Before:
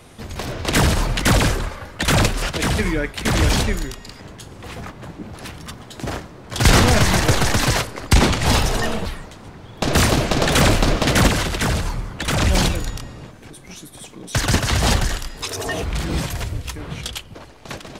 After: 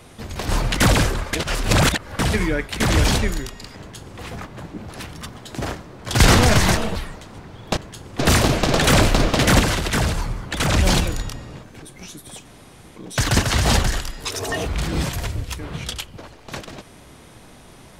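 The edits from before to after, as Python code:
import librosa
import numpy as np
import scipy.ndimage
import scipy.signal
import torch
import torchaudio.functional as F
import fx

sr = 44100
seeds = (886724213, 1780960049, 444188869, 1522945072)

y = fx.edit(x, sr, fx.cut(start_s=0.49, length_s=0.45),
    fx.reverse_span(start_s=1.78, length_s=0.86),
    fx.duplicate(start_s=4.23, length_s=0.42, to_s=9.87),
    fx.cut(start_s=7.22, length_s=1.65),
    fx.insert_room_tone(at_s=14.13, length_s=0.51), tone=tone)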